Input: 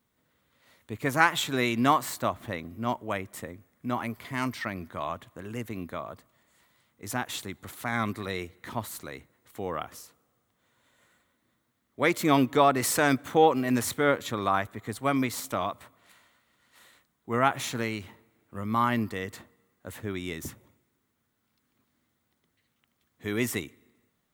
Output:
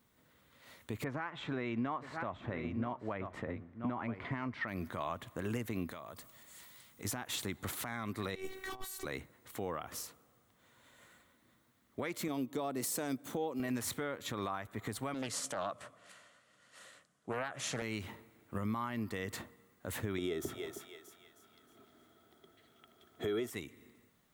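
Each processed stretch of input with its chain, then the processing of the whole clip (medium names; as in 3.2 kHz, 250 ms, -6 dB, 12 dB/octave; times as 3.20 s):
1.04–4.68 s: low-pass 2 kHz + delay 976 ms -16 dB
5.91–7.05 s: treble shelf 3.3 kHz +11 dB + compression, threshold -47 dBFS
8.35–9.05 s: companding laws mixed up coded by mu + compressor with a negative ratio -37 dBFS, ratio -0.5 + robot voice 379 Hz
12.28–13.60 s: high-pass 180 Hz + peaking EQ 1.6 kHz -12 dB 2.6 oct
15.14–17.82 s: cabinet simulation 140–9800 Hz, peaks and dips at 240 Hz -7 dB, 360 Hz -7 dB, 580 Hz +4 dB, 900 Hz -9 dB, 2.2 kHz -6 dB, 3.8 kHz -6 dB + loudspeaker Doppler distortion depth 0.43 ms
20.18–23.50 s: small resonant body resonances 400/660/1300/3300 Hz, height 17 dB, ringing for 35 ms + thinning echo 314 ms, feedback 42%, high-pass 660 Hz, level -14 dB
whole clip: compression 16:1, threshold -35 dBFS; peak limiter -30.5 dBFS; trim +3.5 dB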